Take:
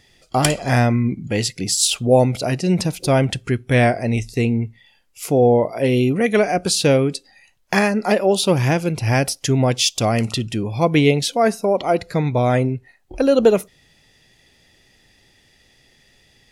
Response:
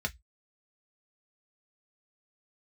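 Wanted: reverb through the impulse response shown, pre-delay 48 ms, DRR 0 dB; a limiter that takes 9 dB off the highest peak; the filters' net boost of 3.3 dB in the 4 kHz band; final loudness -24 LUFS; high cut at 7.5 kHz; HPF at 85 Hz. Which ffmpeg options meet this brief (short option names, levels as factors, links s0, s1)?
-filter_complex "[0:a]highpass=85,lowpass=7500,equalizer=f=4000:t=o:g=4.5,alimiter=limit=0.316:level=0:latency=1,asplit=2[s0][s1];[1:a]atrim=start_sample=2205,adelay=48[s2];[s1][s2]afir=irnorm=-1:irlink=0,volume=0.596[s3];[s0][s3]amix=inputs=2:normalize=0,volume=0.473"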